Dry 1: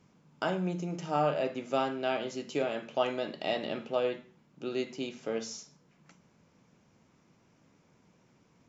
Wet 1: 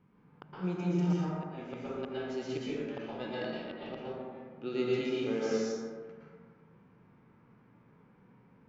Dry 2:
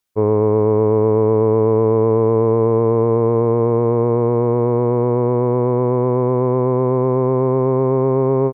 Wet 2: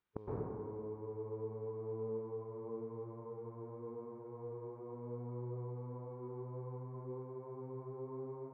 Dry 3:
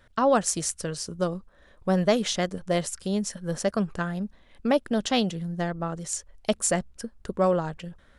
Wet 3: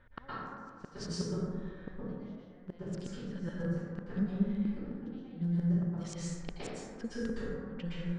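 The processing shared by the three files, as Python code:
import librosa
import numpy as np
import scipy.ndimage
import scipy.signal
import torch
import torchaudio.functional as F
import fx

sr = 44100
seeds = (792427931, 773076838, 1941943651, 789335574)

y = scipy.signal.sosfilt(scipy.signal.butter(2, 5200.0, 'lowpass', fs=sr, output='sos'), x)
y = fx.gate_flip(y, sr, shuts_db=-21.0, range_db=-36)
y = fx.peak_eq(y, sr, hz=630.0, db=-6.5, octaves=0.44)
y = fx.rev_plate(y, sr, seeds[0], rt60_s=1.8, hf_ratio=0.35, predelay_ms=105, drr_db=-5.5)
y = fx.env_lowpass(y, sr, base_hz=1900.0, full_db=-29.0)
y = fx.hpss(y, sr, part='percussive', gain_db=-7)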